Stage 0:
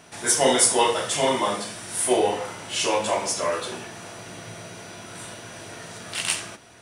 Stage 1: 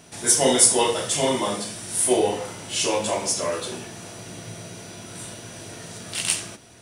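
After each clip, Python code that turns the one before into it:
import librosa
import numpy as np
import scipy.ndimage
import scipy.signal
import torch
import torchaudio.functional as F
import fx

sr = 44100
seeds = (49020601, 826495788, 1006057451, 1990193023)

y = fx.peak_eq(x, sr, hz=1300.0, db=-8.0, octaves=2.7)
y = y * 10.0 ** (4.0 / 20.0)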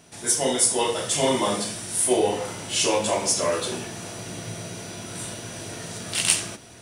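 y = fx.rider(x, sr, range_db=4, speed_s=0.5)
y = y * 10.0 ** (-1.0 / 20.0)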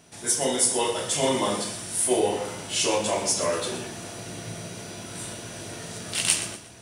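y = fx.echo_feedback(x, sr, ms=120, feedback_pct=34, wet_db=-12.5)
y = y * 10.0 ** (-2.0 / 20.0)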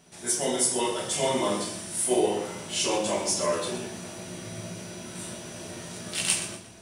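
y = fx.room_shoebox(x, sr, seeds[0], volume_m3=210.0, walls='furnished', distance_m=1.1)
y = y * 10.0 ** (-4.0 / 20.0)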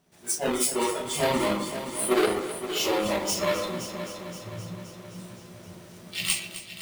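y = fx.halfwave_hold(x, sr)
y = fx.noise_reduce_blind(y, sr, reduce_db=12)
y = fx.echo_heads(y, sr, ms=261, heads='first and second', feedback_pct=60, wet_db=-13.5)
y = y * 10.0 ** (-3.0 / 20.0)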